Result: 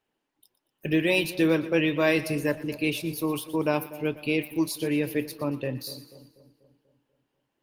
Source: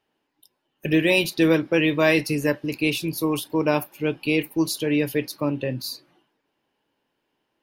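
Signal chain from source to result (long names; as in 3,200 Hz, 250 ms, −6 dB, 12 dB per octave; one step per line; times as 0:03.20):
echo with a time of its own for lows and highs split 830 Hz, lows 244 ms, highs 118 ms, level −15 dB
level −4 dB
Opus 32 kbit/s 48,000 Hz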